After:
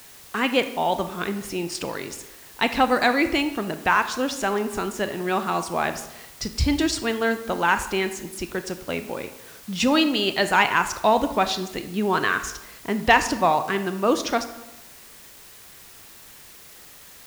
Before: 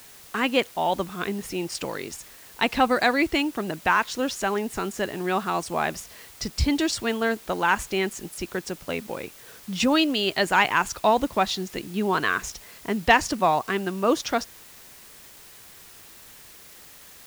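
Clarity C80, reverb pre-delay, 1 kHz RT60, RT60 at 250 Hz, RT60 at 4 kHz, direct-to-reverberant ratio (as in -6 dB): 13.5 dB, 24 ms, 0.95 s, 0.95 s, 0.60 s, 9.5 dB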